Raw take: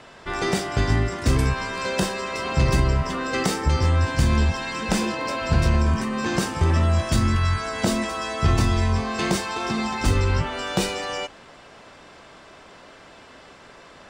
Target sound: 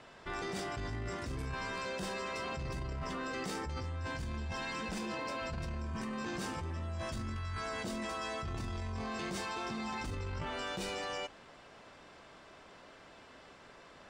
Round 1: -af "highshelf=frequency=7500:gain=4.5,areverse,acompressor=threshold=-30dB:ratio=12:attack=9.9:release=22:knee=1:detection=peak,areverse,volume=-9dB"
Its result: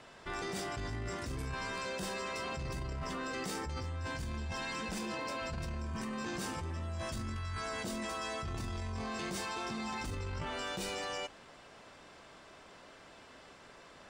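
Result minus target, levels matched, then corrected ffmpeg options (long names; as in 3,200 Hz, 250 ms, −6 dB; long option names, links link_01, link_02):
8,000 Hz band +3.0 dB
-af "highshelf=frequency=7500:gain=-3.5,areverse,acompressor=threshold=-30dB:ratio=12:attack=9.9:release=22:knee=1:detection=peak,areverse,volume=-9dB"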